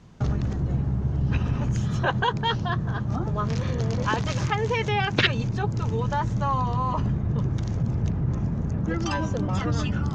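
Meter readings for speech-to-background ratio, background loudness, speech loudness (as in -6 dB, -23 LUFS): 1.0 dB, -26.0 LUFS, -25.0 LUFS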